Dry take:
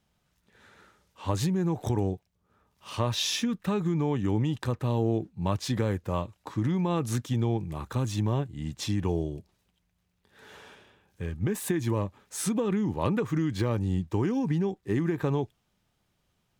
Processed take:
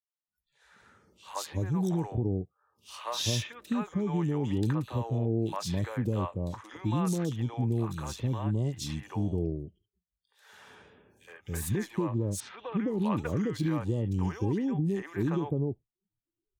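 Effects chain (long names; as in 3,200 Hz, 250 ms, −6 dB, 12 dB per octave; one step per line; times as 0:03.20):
0:12.40–0:12.88: low-pass filter 4,100 Hz 24 dB per octave
three-band delay without the direct sound highs, mids, lows 70/280 ms, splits 570/2,900 Hz
noise reduction from a noise print of the clip's start 27 dB
level −1.5 dB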